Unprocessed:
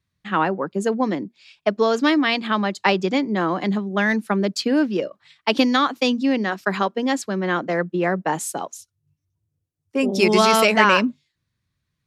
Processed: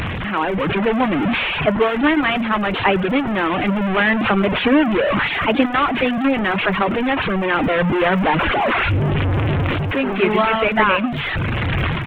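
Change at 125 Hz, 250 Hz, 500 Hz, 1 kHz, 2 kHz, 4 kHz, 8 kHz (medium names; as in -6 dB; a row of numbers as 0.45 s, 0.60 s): +10.5 dB, +3.0 dB, +2.5 dB, +3.5 dB, +5.0 dB, +1.5 dB, under -20 dB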